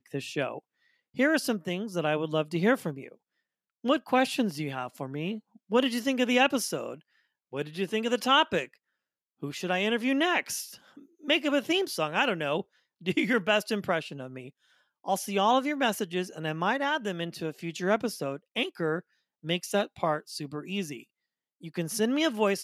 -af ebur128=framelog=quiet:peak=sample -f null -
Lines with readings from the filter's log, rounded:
Integrated loudness:
  I:         -28.6 LUFS
  Threshold: -39.3 LUFS
Loudness range:
  LRA:         3.4 LU
  Threshold: -49.4 LUFS
  LRA low:   -31.3 LUFS
  LRA high:  -27.9 LUFS
Sample peak:
  Peak:      -10.7 dBFS